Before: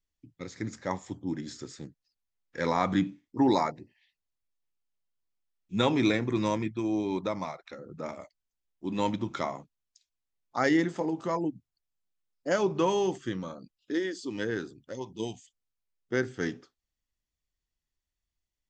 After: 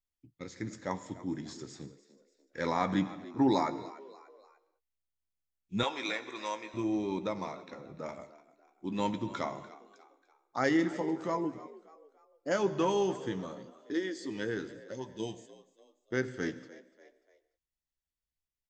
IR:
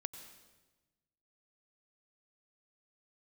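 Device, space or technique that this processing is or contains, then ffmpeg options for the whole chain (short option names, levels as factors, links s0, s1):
keyed gated reverb: -filter_complex "[0:a]asplit=3[s0][s1][s2];[1:a]atrim=start_sample=2205[s3];[s1][s3]afir=irnorm=-1:irlink=0[s4];[s2]apad=whole_len=824407[s5];[s4][s5]sidechaingate=range=0.0224:threshold=0.00316:ratio=16:detection=peak,volume=1.06[s6];[s0][s6]amix=inputs=2:normalize=0,asettb=1/sr,asplit=3[s7][s8][s9];[s7]atrim=end=5.834[s10];[s8]atrim=start=5.83:end=6.74,asetpts=PTS-STARTPTS,afade=t=in:d=0.004:c=qsin,afade=t=out:st=0.906:d=0.004:c=qsin,highpass=710[s11];[s9]atrim=start=6.736[s12];[s10][s11]acrossfade=d=0.004:c1=hsin:c2=qsin[s13];[s13][s12]acrossfade=d=0.004:c1=qsin:c2=hsin,asplit=2[s14][s15];[s15]adelay=15,volume=0.251[s16];[s14][s16]amix=inputs=2:normalize=0,asplit=4[s17][s18][s19][s20];[s18]adelay=294,afreqshift=67,volume=0.126[s21];[s19]adelay=588,afreqshift=134,volume=0.0531[s22];[s20]adelay=882,afreqshift=201,volume=0.0221[s23];[s17][s21][s22][s23]amix=inputs=4:normalize=0,volume=0.376"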